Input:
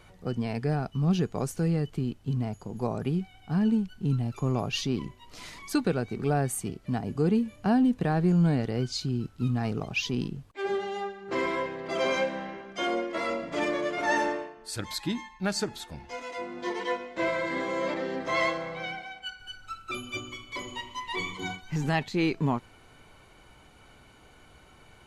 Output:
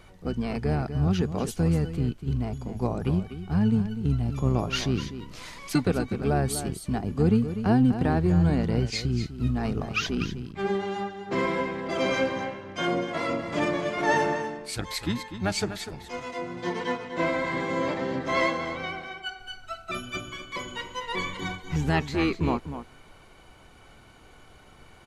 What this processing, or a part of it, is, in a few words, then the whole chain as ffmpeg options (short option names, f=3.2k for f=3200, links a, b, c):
octave pedal: -filter_complex "[0:a]asettb=1/sr,asplit=3[a][b][c];[a]atrim=end=1.074[d];[b]atrim=start=1.07:end=1.48,asetpts=PTS-STARTPTS,afade=t=in:d=0.004:c=qsin,afade=t=out:st=0.406:d=0.004:c=qsin,highpass=160[e];[c]atrim=start=1.476[f];[d][e]acrossfade=d=0.004:c1=hsin:c2=qsin[g];[g][f]acrossfade=d=0.004:c1=qsin:c2=hsin,aecho=1:1:247:0.299,asplit=2[h][i];[i]asetrate=22050,aresample=44100,atempo=2,volume=-5dB[j];[h][j]amix=inputs=2:normalize=0,volume=1dB"